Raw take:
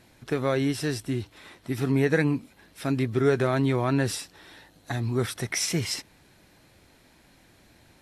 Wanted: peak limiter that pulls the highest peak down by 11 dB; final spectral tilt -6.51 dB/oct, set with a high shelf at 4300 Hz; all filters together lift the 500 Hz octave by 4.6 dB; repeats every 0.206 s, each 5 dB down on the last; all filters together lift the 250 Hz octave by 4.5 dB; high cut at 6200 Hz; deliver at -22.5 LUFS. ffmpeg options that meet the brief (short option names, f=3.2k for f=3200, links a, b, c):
-af "lowpass=6.2k,equalizer=f=250:t=o:g=4,equalizer=f=500:t=o:g=4.5,highshelf=f=4.3k:g=-7,alimiter=limit=-17dB:level=0:latency=1,aecho=1:1:206|412|618|824|1030|1236|1442:0.562|0.315|0.176|0.0988|0.0553|0.031|0.0173,volume=5dB"